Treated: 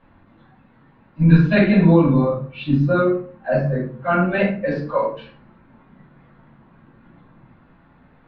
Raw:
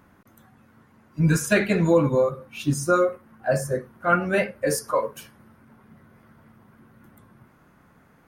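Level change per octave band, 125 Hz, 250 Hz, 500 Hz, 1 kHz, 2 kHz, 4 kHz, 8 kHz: +8.5 dB, +8.5 dB, +2.0 dB, +1.5 dB, +1.5 dB, 0.0 dB, below −35 dB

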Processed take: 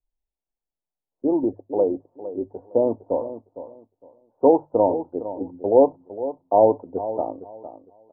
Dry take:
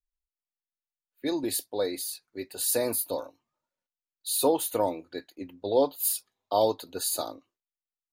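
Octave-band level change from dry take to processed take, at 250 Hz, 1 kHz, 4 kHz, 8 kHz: +8.5 dB, +7.5 dB, below −40 dB, below −40 dB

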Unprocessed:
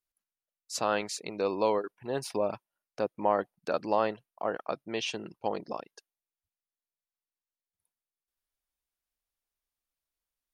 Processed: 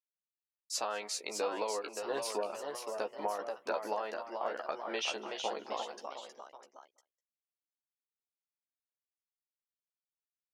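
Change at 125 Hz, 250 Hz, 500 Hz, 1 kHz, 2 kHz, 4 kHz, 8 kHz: below −15 dB, −10.0 dB, −6.0 dB, −5.0 dB, −2.5 dB, 0.0 dB, +1.0 dB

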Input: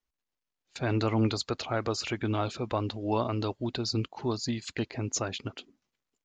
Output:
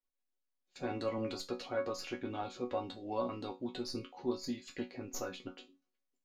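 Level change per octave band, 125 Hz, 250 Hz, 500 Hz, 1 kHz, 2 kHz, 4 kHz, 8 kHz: −18.0, −8.5, −5.5, −7.5, −9.5, −10.5, −11.5 decibels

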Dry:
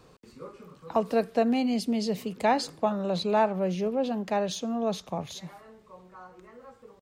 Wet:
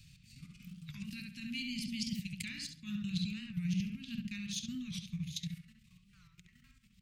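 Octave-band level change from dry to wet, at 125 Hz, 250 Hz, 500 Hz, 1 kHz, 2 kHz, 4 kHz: −2.0 dB, −9.5 dB, below −40 dB, below −40 dB, −7.5 dB, −4.0 dB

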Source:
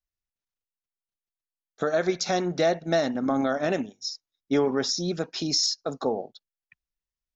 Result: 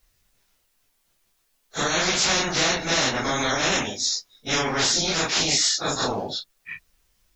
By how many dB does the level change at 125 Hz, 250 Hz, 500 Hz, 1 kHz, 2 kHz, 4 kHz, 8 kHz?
+2.5 dB, −2.5 dB, −3.0 dB, +4.5 dB, +10.5 dB, +8.5 dB, can't be measured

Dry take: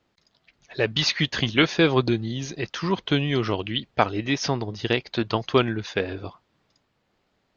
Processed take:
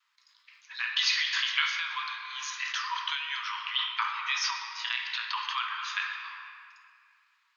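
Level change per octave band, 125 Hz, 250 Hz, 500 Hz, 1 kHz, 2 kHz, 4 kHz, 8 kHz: below −40 dB, below −40 dB, below −40 dB, −4.0 dB, −1.5 dB, −2.0 dB, can't be measured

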